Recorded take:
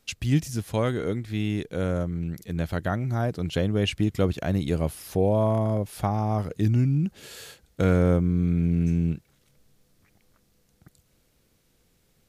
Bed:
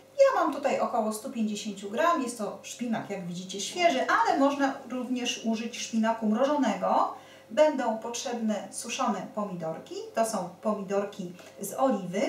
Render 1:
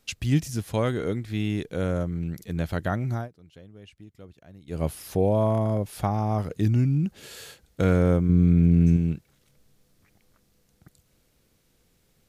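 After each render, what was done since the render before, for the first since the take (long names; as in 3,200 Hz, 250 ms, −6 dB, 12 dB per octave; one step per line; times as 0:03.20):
0:03.12–0:04.84: duck −23.5 dB, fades 0.17 s
0:08.29–0:08.97: low-shelf EQ 480 Hz +5.5 dB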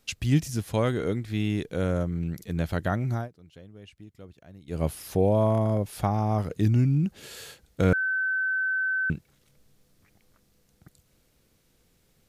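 0:07.93–0:09.10: beep over 1,530 Hz −23.5 dBFS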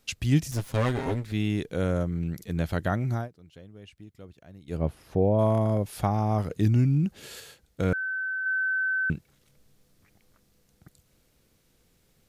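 0:00.51–0:01.32: lower of the sound and its delayed copy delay 7.5 ms
0:04.77–0:05.39: low-pass filter 1,000 Hz 6 dB per octave
0:07.40–0:08.46: clip gain −4 dB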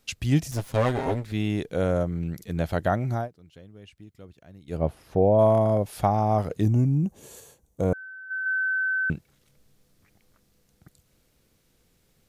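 0:06.63–0:08.31: gain on a spectral selection 1,200–5,600 Hz −11 dB
dynamic equaliser 680 Hz, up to +7 dB, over −42 dBFS, Q 1.3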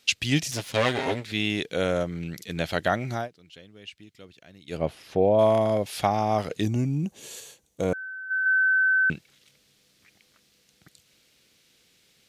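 meter weighting curve D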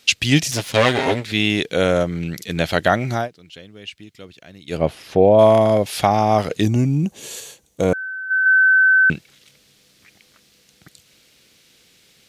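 level +8 dB
brickwall limiter −1 dBFS, peak gain reduction 1.5 dB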